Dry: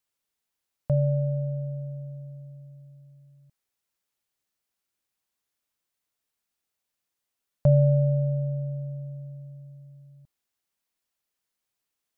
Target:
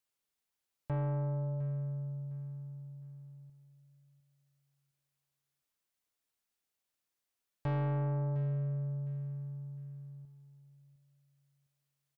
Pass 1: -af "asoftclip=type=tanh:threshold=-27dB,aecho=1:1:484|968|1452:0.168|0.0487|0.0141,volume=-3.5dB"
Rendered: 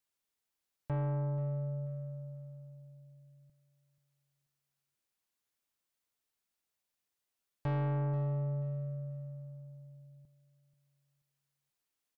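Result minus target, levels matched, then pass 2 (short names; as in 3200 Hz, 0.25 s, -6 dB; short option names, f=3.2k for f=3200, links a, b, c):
echo 0.223 s early
-af "asoftclip=type=tanh:threshold=-27dB,aecho=1:1:707|1414|2121:0.168|0.0487|0.0141,volume=-3.5dB"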